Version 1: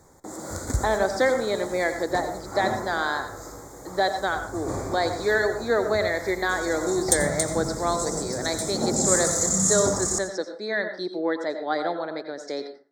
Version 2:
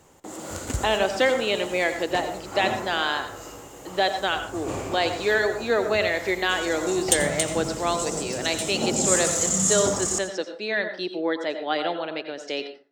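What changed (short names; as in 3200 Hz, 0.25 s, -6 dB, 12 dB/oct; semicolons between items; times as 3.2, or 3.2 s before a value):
background: add low shelf 90 Hz -6 dB; master: remove Butterworth band-stop 2800 Hz, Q 1.5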